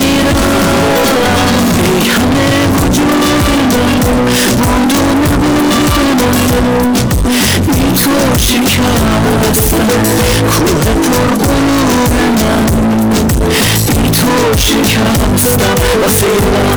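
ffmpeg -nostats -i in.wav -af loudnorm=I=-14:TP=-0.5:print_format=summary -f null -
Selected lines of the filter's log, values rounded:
Input Integrated:     -9.5 LUFS
Input True Peak:      -3.2 dBTP
Input LRA:             0.3 LU
Input Threshold:     -19.5 LUFS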